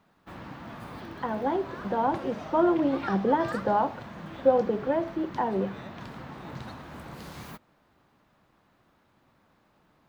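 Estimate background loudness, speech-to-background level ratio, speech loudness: -41.0 LUFS, 13.5 dB, -27.5 LUFS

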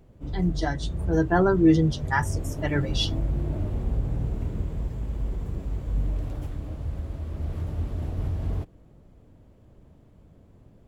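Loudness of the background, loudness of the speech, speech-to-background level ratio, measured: -31.5 LUFS, -24.5 LUFS, 7.0 dB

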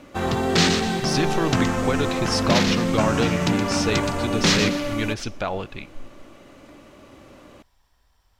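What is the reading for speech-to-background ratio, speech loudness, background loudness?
-5.0 dB, -27.0 LUFS, -22.0 LUFS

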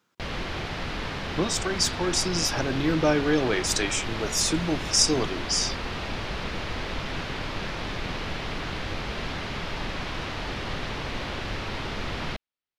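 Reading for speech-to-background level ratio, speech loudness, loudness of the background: 7.5 dB, -25.0 LUFS, -32.5 LUFS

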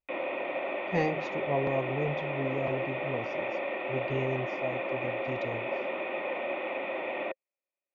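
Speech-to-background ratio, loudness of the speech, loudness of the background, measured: -1.5 dB, -35.0 LUFS, -33.5 LUFS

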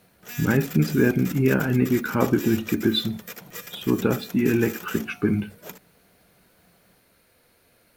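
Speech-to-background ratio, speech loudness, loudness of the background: 15.0 dB, -23.0 LUFS, -38.0 LUFS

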